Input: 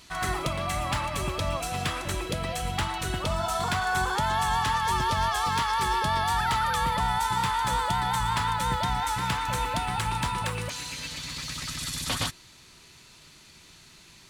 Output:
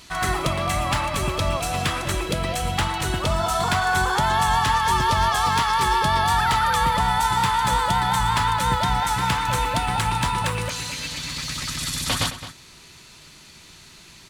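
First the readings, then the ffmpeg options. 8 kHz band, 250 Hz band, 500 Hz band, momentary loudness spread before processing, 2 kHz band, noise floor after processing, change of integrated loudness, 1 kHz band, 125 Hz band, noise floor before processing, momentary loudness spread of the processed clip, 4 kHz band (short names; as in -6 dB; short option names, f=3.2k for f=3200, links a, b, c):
+5.5 dB, +6.0 dB, +5.5 dB, 6 LU, +5.5 dB, -47 dBFS, +5.5 dB, +6.0 dB, +6.0 dB, -53 dBFS, 7 LU, +5.5 dB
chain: -filter_complex "[0:a]asplit=2[a][b];[b]adelay=215.7,volume=-12dB,highshelf=f=4k:g=-4.85[c];[a][c]amix=inputs=2:normalize=0,volume=5.5dB"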